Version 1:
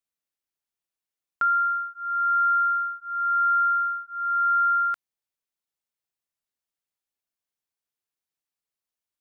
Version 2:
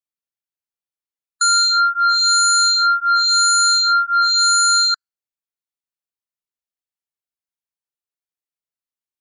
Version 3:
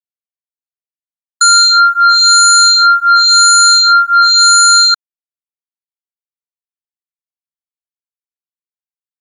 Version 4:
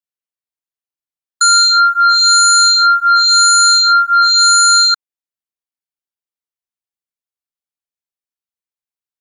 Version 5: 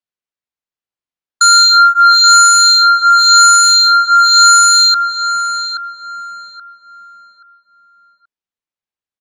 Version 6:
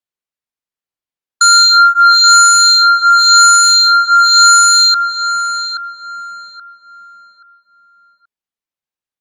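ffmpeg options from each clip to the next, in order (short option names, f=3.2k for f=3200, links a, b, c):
-af "aeval=exprs='0.133*sin(PI/2*3.55*val(0)/0.133)':c=same,afftdn=nr=27:nf=-31,volume=5.5dB"
-af "aeval=exprs='sgn(val(0))*max(abs(val(0))-0.00178,0)':c=same,volume=8dB"
-af "alimiter=limit=-6.5dB:level=0:latency=1:release=256"
-filter_complex "[0:a]adynamicsmooth=sensitivity=5:basefreq=6.2k,asplit=2[a][b];[b]adelay=828,lowpass=f=2k:p=1,volume=-5.5dB,asplit=2[c][d];[d]adelay=828,lowpass=f=2k:p=1,volume=0.36,asplit=2[e][f];[f]adelay=828,lowpass=f=2k:p=1,volume=0.36,asplit=2[g][h];[h]adelay=828,lowpass=f=2k:p=1,volume=0.36[i];[c][e][g][i]amix=inputs=4:normalize=0[j];[a][j]amix=inputs=2:normalize=0,volume=3dB"
-ar 48000 -c:a libopus -b:a 96k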